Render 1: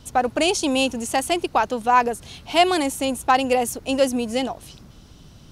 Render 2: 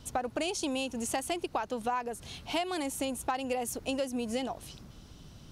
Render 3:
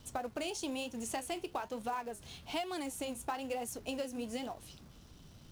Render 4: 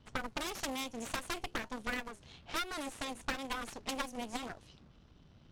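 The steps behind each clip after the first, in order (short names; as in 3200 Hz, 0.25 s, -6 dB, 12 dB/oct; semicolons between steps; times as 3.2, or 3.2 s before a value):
compressor 12:1, threshold -24 dBFS, peak gain reduction 14 dB; gain -4.5 dB
flange 1.1 Hz, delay 8.3 ms, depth 6.6 ms, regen -67%; in parallel at -8 dB: companded quantiser 4-bit; on the sum: gain -4.5 dB
added harmonics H 3 -7 dB, 6 -11 dB, 8 -19 dB, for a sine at -24.5 dBFS; low-pass opened by the level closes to 3000 Hz, open at -39 dBFS; gain +5.5 dB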